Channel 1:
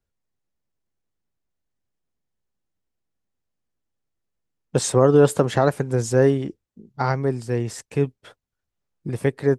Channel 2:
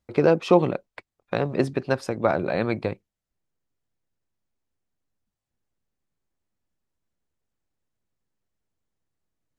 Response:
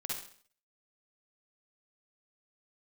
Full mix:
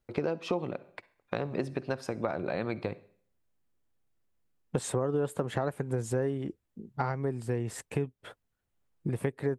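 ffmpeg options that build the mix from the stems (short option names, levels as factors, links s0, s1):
-filter_complex "[0:a]equalizer=f=5500:w=1.5:g=-9.5,volume=1.06[s0];[1:a]volume=0.631,asplit=2[s1][s2];[s2]volume=0.112[s3];[2:a]atrim=start_sample=2205[s4];[s3][s4]afir=irnorm=-1:irlink=0[s5];[s0][s1][s5]amix=inputs=3:normalize=0,acompressor=threshold=0.0398:ratio=5"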